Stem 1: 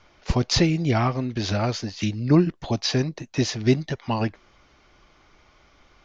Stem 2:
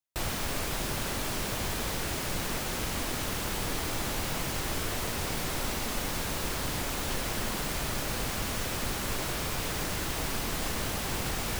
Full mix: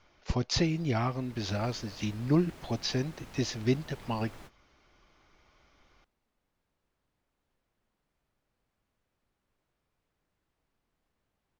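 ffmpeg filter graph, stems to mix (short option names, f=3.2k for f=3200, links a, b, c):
-filter_complex "[0:a]volume=-8dB,asplit=2[a][b];[1:a]highshelf=f=4.2k:g=-11,adelay=400,volume=-15.5dB,afade=t=in:st=1.18:d=0.38:silence=0.446684[c];[b]apad=whole_len=529194[d];[c][d]sidechaingate=range=-32dB:threshold=-54dB:ratio=16:detection=peak[e];[a][e]amix=inputs=2:normalize=0"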